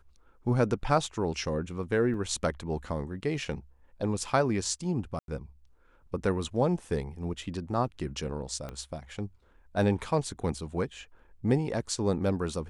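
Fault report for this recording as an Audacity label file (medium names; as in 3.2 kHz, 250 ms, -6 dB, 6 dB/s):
2.140000	2.140000	dropout 2.7 ms
5.190000	5.280000	dropout 92 ms
8.690000	8.690000	pop -24 dBFS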